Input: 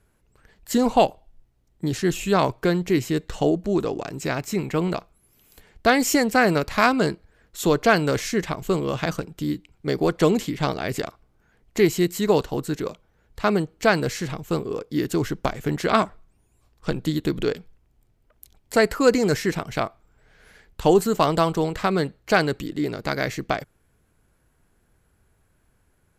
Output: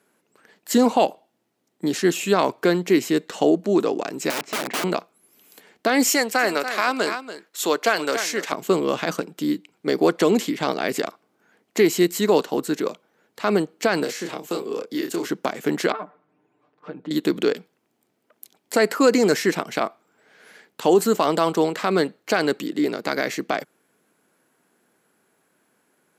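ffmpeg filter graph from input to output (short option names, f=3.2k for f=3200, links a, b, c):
-filter_complex "[0:a]asettb=1/sr,asplit=3[a][b][c];[a]atrim=end=4.304[d];[b]atrim=start=4.3:end=4.84,asetpts=PTS-STARTPTS,afade=t=in:d=0.004:c=qsin,afade=t=out:st=0.536:d=0.004:c=qsin,adynamicsmooth=sensitivity=1:basefreq=3.2k,aeval=exprs='(mod(15.8*val(0)+1,2)-1)/15.8':c=same[e];[c]atrim=start=4.836[f];[d][e]acrossfade=d=0.004:c1=hsin:c2=qsin[g];[g][f]acrossfade=d=0.004:c1=qsin:c2=hsin,asettb=1/sr,asplit=3[h][i][j];[h]atrim=end=6.104[k];[i]atrim=start=6.1:end=8.52,asetpts=PTS-STARTPTS,afade=t=in:d=0.004:c=qsin,afade=t=out:st=2.416:d=0.004:c=qsin,highpass=f=750:p=1,aecho=1:1:286:0.224,atrim=end_sample=106722[l];[j]atrim=start=8.516[m];[k][l]acrossfade=d=0.004:c1=hsin:c2=qsin[n];[n][m]acrossfade=d=0.004:c1=qsin:c2=hsin,asettb=1/sr,asplit=3[o][p][q];[o]atrim=end=14.034[r];[p]atrim=start=14.03:end=15.29,asetpts=PTS-STARTPTS,afade=t=in:d=0.004:c=qsin,afade=t=out:st=1.256:d=0.004:c=qsin,asplit=2[s][t];[t]adelay=29,volume=-5dB[u];[s][u]amix=inputs=2:normalize=0,atrim=end_sample=55566,acrossover=split=260|1000|2100[v][w][x][y];[v]acompressor=threshold=-42dB:ratio=3[z];[w]acompressor=threshold=-30dB:ratio=3[aa];[x]acompressor=threshold=-48dB:ratio=3[ab];[y]acompressor=threshold=-38dB:ratio=3[ac];[z][aa][ab][ac]amix=inputs=4:normalize=0[ad];[q]atrim=start=15.286[ae];[r][ad]acrossfade=d=0.004:c1=hsin:c2=qsin[af];[af][ae]acrossfade=d=0.004:c1=qsin:c2=hsin,asettb=1/sr,asplit=3[ag][ah][ai];[ag]atrim=end=15.924[aj];[ah]atrim=start=15.92:end=17.11,asetpts=PTS-STARTPTS,afade=t=in:d=0.004:c=qsin,afade=t=out:st=1.186:d=0.004:c=qsin,lowpass=1.8k,acompressor=threshold=-47dB:ratio=2:attack=3.2:release=140:knee=1:detection=peak,aecho=1:1:6.7:1,atrim=end_sample=52479[ak];[ai]atrim=start=17.106[al];[aj][ak]acrossfade=d=0.004:c1=hsin:c2=qsin[am];[am][al]acrossfade=d=0.004:c1=qsin:c2=hsin,highpass=f=210:w=0.5412,highpass=f=210:w=1.3066,alimiter=limit=-11dB:level=0:latency=1:release=54,volume=4dB"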